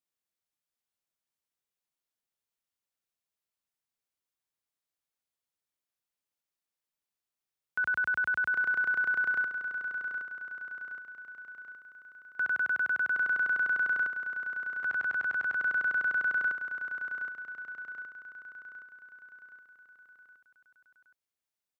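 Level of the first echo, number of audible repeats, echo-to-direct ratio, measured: -8.0 dB, 5, -6.5 dB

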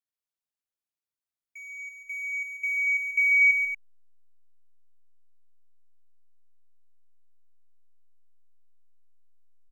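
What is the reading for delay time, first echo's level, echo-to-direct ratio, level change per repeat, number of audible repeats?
0.139 s, -10.0 dB, -6.0 dB, no steady repeat, 2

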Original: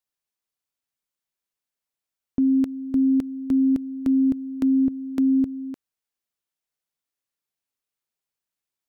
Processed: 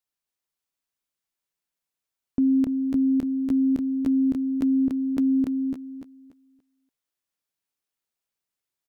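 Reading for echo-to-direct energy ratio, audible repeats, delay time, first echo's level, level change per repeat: -4.0 dB, 3, 0.287 s, -4.5 dB, -11.5 dB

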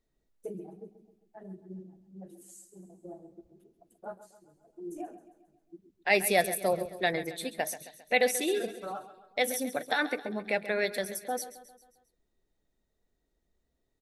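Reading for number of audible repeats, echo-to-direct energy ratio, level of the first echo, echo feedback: 4, -12.5 dB, -14.0 dB, 51%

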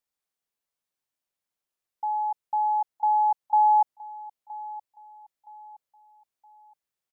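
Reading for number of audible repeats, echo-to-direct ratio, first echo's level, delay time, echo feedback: 2, -17.5 dB, -18.0 dB, 0.969 s, 35%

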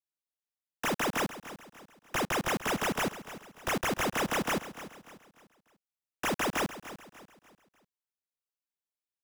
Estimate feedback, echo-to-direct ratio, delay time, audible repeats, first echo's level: 39%, -13.5 dB, 0.296 s, 3, -14.0 dB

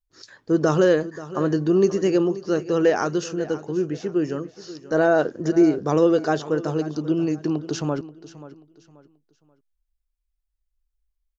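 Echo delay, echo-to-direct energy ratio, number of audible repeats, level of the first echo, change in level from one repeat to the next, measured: 0.533 s, -15.5 dB, 2, -16.0 dB, -10.5 dB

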